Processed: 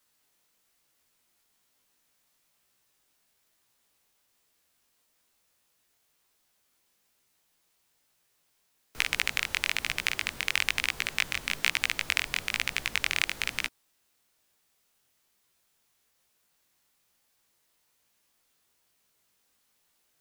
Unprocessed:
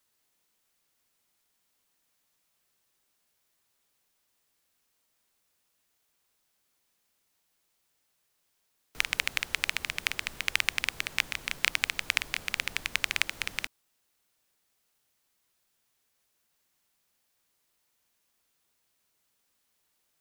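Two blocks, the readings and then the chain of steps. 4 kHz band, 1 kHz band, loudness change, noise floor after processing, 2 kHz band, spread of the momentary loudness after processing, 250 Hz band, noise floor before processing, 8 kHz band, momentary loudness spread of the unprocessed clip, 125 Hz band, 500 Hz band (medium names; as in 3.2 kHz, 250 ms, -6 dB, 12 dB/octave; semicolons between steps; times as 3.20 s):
+1.5 dB, +1.5 dB, +1.5 dB, -73 dBFS, +1.5 dB, 4 LU, +3.0 dB, -76 dBFS, +1.5 dB, 5 LU, +3.0 dB, +2.5 dB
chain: chorus 1.1 Hz, delay 15.5 ms, depth 7.4 ms; in parallel at +0.5 dB: peak limiter -14.5 dBFS, peak gain reduction 8.5 dB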